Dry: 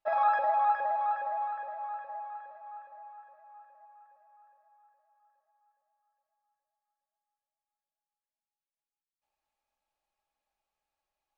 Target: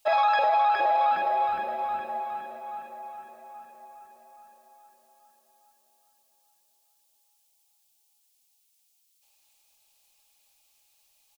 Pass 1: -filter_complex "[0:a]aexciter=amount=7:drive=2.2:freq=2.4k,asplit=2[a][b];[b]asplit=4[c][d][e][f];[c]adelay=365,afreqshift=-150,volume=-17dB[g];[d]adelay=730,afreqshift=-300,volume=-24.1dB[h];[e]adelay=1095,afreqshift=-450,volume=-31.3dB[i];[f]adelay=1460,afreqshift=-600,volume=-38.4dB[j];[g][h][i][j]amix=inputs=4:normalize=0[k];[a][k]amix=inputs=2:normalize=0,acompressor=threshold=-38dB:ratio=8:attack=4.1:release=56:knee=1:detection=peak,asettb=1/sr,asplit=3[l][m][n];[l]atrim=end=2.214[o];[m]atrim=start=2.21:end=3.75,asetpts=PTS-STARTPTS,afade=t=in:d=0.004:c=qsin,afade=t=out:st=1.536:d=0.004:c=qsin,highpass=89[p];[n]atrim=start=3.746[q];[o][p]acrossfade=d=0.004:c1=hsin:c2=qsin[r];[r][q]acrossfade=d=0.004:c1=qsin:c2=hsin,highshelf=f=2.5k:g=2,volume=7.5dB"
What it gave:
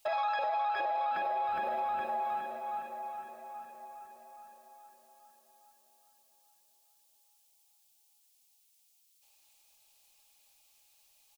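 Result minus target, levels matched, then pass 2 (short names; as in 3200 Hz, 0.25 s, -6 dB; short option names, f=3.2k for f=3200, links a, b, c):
compressor: peak gain reduction +9.5 dB
-filter_complex "[0:a]aexciter=amount=7:drive=2.2:freq=2.4k,asplit=2[a][b];[b]asplit=4[c][d][e][f];[c]adelay=365,afreqshift=-150,volume=-17dB[g];[d]adelay=730,afreqshift=-300,volume=-24.1dB[h];[e]adelay=1095,afreqshift=-450,volume=-31.3dB[i];[f]adelay=1460,afreqshift=-600,volume=-38.4dB[j];[g][h][i][j]amix=inputs=4:normalize=0[k];[a][k]amix=inputs=2:normalize=0,acompressor=threshold=-27dB:ratio=8:attack=4.1:release=56:knee=1:detection=peak,asettb=1/sr,asplit=3[l][m][n];[l]atrim=end=2.214[o];[m]atrim=start=2.21:end=3.75,asetpts=PTS-STARTPTS,afade=t=in:d=0.004:c=qsin,afade=t=out:st=1.536:d=0.004:c=qsin,highpass=89[p];[n]atrim=start=3.746[q];[o][p]acrossfade=d=0.004:c1=hsin:c2=qsin[r];[r][q]acrossfade=d=0.004:c1=qsin:c2=hsin,highshelf=f=2.5k:g=2,volume=7.5dB"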